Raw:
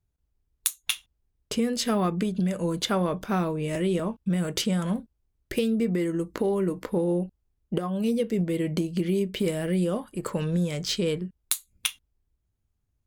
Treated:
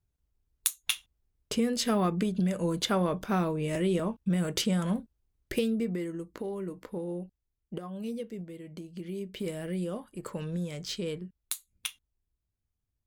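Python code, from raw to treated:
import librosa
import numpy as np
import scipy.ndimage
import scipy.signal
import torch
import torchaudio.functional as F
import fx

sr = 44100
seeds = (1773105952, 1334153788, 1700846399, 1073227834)

y = fx.gain(x, sr, db=fx.line((5.54, -2.0), (6.26, -10.5), (8.16, -10.5), (8.62, -18.0), (9.49, -8.0)))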